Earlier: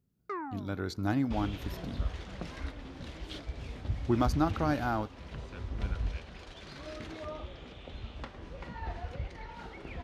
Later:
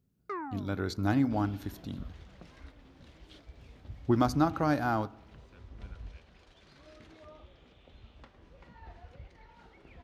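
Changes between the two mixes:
speech: send +10.5 dB
second sound −11.5 dB

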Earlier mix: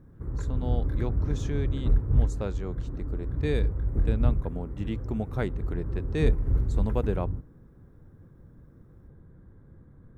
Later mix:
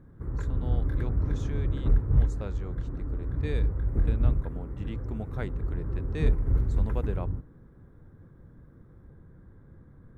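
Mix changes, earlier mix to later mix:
speech −7.0 dB
master: add parametric band 1,800 Hz +3 dB 2.2 octaves

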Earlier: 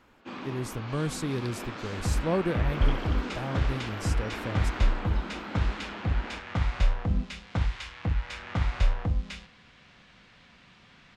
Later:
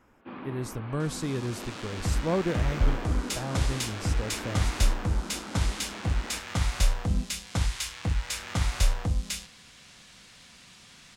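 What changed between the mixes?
first sound: add high-frequency loss of the air 430 metres
second sound: remove low-pass filter 2,600 Hz 12 dB per octave

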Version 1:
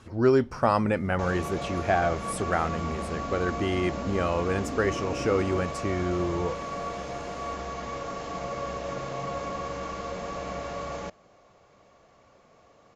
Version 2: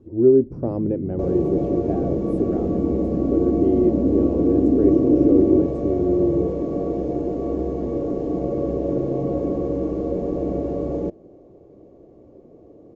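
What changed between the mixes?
first sound +12.0 dB
second sound +11.0 dB
master: add drawn EQ curve 210 Hz 0 dB, 330 Hz +12 dB, 1,300 Hz −27 dB

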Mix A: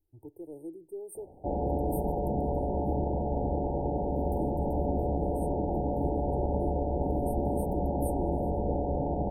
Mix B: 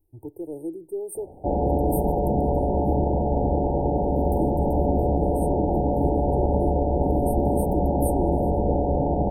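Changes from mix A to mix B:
speech +9.5 dB
background +7.5 dB

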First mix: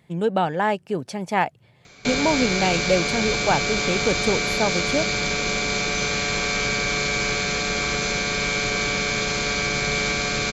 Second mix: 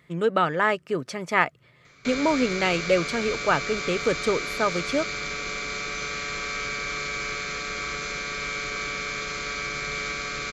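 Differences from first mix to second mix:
background −9.0 dB
master: add thirty-one-band graphic EQ 100 Hz −12 dB, 200 Hz −7 dB, 800 Hz −10 dB, 1,250 Hz +10 dB, 2,000 Hz +6 dB, 10,000 Hz −5 dB

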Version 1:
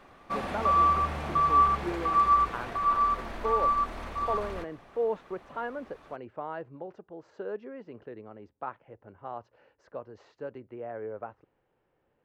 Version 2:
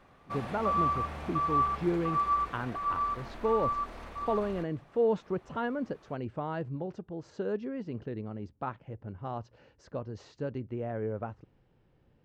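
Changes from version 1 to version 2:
speech: remove three-way crossover with the lows and the highs turned down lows −15 dB, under 360 Hz, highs −12 dB, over 2,600 Hz
background −6.0 dB

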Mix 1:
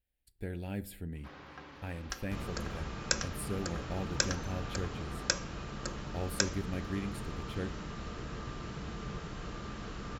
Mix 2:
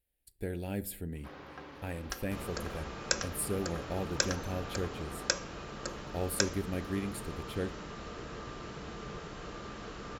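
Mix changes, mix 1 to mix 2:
speech: add parametric band 12,000 Hz +9.5 dB 1.7 octaves
second sound: add low-shelf EQ 400 Hz −6 dB
master: add parametric band 460 Hz +5 dB 1.6 octaves

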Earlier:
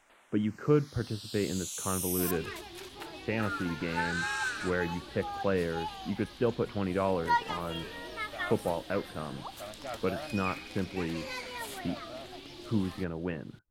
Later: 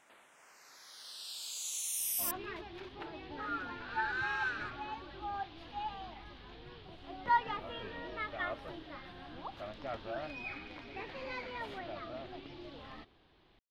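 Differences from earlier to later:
speech: muted
second sound: add high-frequency loss of the air 290 metres

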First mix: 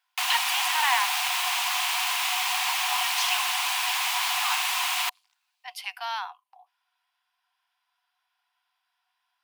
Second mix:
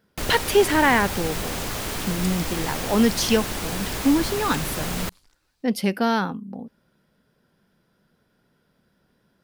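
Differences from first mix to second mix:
first sound −10.5 dB
master: remove Chebyshev high-pass with heavy ripple 710 Hz, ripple 9 dB

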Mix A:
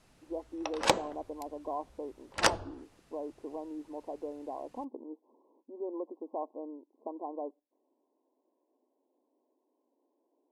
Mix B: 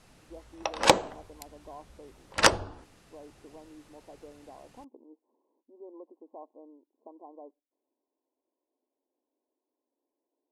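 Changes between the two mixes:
speech −9.5 dB
background +6.0 dB

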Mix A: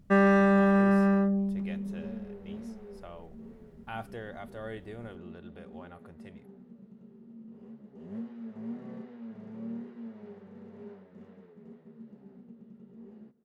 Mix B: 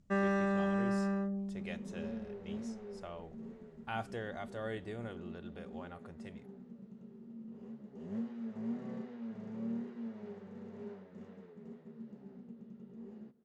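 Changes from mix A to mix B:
first sound −10.0 dB
master: add low-pass with resonance 7,300 Hz, resonance Q 2.2

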